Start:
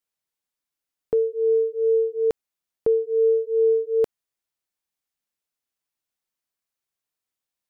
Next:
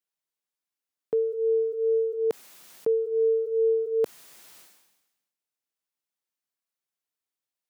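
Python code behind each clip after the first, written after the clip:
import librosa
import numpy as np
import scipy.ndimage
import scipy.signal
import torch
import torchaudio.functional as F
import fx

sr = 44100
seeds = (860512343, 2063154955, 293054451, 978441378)

y = scipy.signal.sosfilt(scipy.signal.butter(2, 150.0, 'highpass', fs=sr, output='sos'), x)
y = fx.sustainer(y, sr, db_per_s=53.0)
y = F.gain(torch.from_numpy(y), -4.0).numpy()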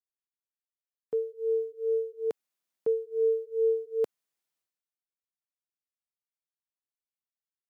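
y = fx.quant_dither(x, sr, seeds[0], bits=12, dither='triangular')
y = fx.upward_expand(y, sr, threshold_db=-44.0, expansion=2.5)
y = F.gain(torch.from_numpy(y), -1.5).numpy()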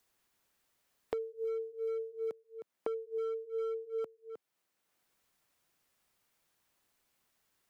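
y = np.clip(x, -10.0 ** (-24.5 / 20.0), 10.0 ** (-24.5 / 20.0))
y = y + 10.0 ** (-17.5 / 20.0) * np.pad(y, (int(311 * sr / 1000.0), 0))[:len(y)]
y = fx.band_squash(y, sr, depth_pct=100)
y = F.gain(torch.from_numpy(y), -8.0).numpy()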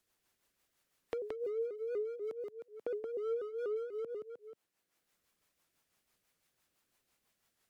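y = x + 10.0 ** (-4.0 / 20.0) * np.pad(x, (int(174 * sr / 1000.0), 0))[:len(x)]
y = fx.rotary(y, sr, hz=6.0)
y = fx.vibrato_shape(y, sr, shape='saw_up', rate_hz=4.1, depth_cents=160.0)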